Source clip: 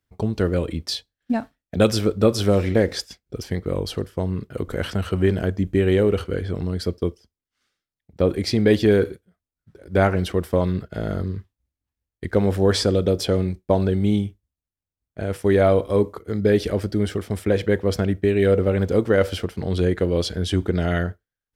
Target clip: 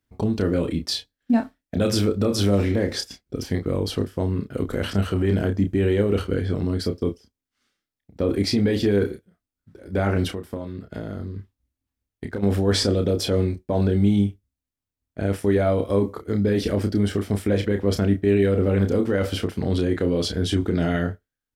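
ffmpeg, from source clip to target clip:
-filter_complex "[0:a]equalizer=f=260:t=o:w=0.51:g=6.5,asplit=3[s0][s1][s2];[s0]afade=t=out:st=10.3:d=0.02[s3];[s1]acompressor=threshold=0.0355:ratio=6,afade=t=in:st=10.3:d=0.02,afade=t=out:st=12.42:d=0.02[s4];[s2]afade=t=in:st=12.42:d=0.02[s5];[s3][s4][s5]amix=inputs=3:normalize=0,alimiter=limit=0.237:level=0:latency=1:release=19,asplit=2[s6][s7];[s7]adelay=30,volume=0.473[s8];[s6][s8]amix=inputs=2:normalize=0"

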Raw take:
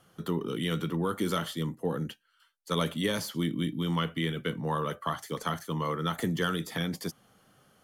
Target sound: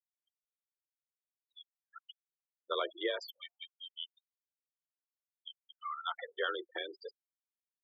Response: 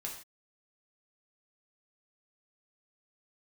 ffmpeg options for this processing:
-af "afftfilt=real='re*gte(hypot(re,im),0.0355)':imag='im*gte(hypot(re,im),0.0355)':win_size=1024:overlap=0.75,afreqshift=42,aexciter=amount=6.6:drive=3:freq=7600,afftfilt=real='re*gte(b*sr/1024,310*pow(7300/310,0.5+0.5*sin(2*PI*0.26*pts/sr)))':imag='im*gte(b*sr/1024,310*pow(7300/310,0.5+0.5*sin(2*PI*0.26*pts/sr)))':win_size=1024:overlap=0.75,volume=0.668"

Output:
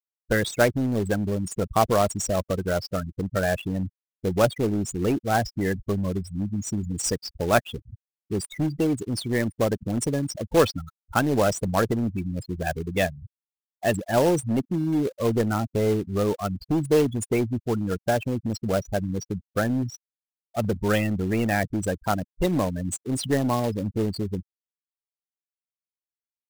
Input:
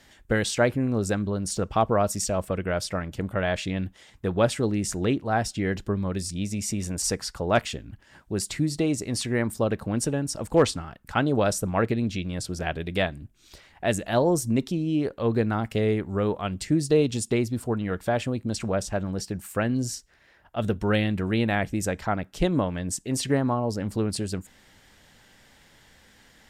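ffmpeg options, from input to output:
-filter_complex "[0:a]afftfilt=real='re*gte(hypot(re,im),0.0708)':imag='im*gte(hypot(re,im),0.0708)':win_size=1024:overlap=0.75,acrossover=split=430[s0][s1];[s0]asoftclip=type=hard:threshold=0.0708[s2];[s1]acrusher=bits=2:mode=log:mix=0:aa=0.000001[s3];[s2][s3]amix=inputs=2:normalize=0,volume=1.26"

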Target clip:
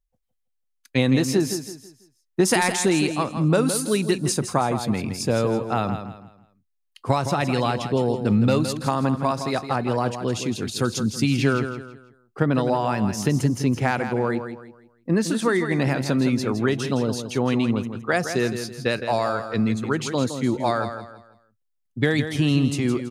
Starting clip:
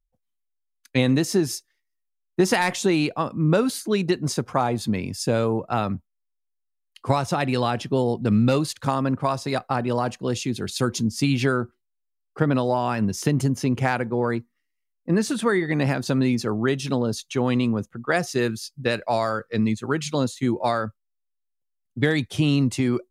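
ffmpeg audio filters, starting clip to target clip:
-filter_complex "[0:a]asettb=1/sr,asplit=3[s0][s1][s2];[s0]atrim=end=2.454[s3];[s1]atrim=start=2.45:end=4.76,asetpts=PTS-STARTPTS,afade=t=in:d=0.004:c=qsin,afade=t=out:st=2.306:d=0.004:c=qsin,equalizer=f=9300:w=1.2:g=9[s4];[s2]atrim=start=4.756[s5];[s3][s4]acrossfade=d=0.004:c1=hsin:c2=qsin[s6];[s6][s5]acrossfade=d=0.004:c1=qsin:c2=hsin,aecho=1:1:164|328|492|656:0.355|0.117|0.0386|0.0128"

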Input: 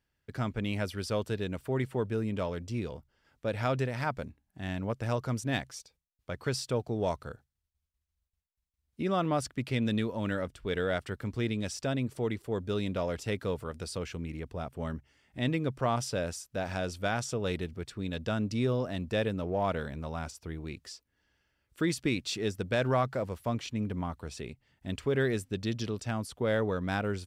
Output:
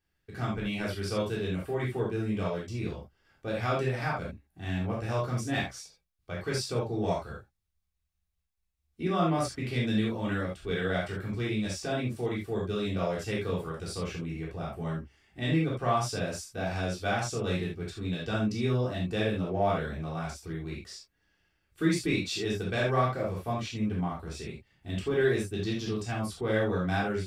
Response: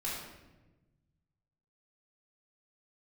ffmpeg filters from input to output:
-filter_complex "[0:a]bandreject=f=1000:w=20[s0];[1:a]atrim=start_sample=2205,atrim=end_sample=3969[s1];[s0][s1]afir=irnorm=-1:irlink=0"

